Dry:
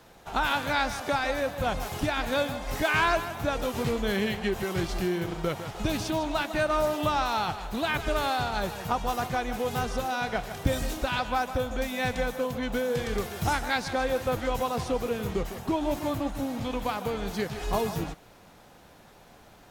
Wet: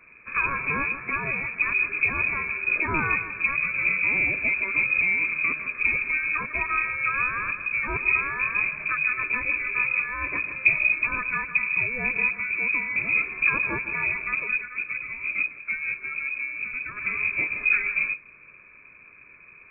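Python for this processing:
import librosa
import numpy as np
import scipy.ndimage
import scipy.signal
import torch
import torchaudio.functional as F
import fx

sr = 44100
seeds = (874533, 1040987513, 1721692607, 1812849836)

y = fx.octave_divider(x, sr, octaves=1, level_db=0.0)
y = fx.peak_eq(y, sr, hz=960.0, db=-9.0, octaves=0.62)
y = y + 0.81 * np.pad(y, (int(0.9 * sr / 1000.0), 0))[:len(y)]
y = 10.0 ** (-11.5 / 20.0) * np.tanh(y / 10.0 ** (-11.5 / 20.0))
y = fx.freq_invert(y, sr, carrier_hz=2500)
y = fx.upward_expand(y, sr, threshold_db=-33.0, expansion=1.5, at=(14.43, 16.96), fade=0.02)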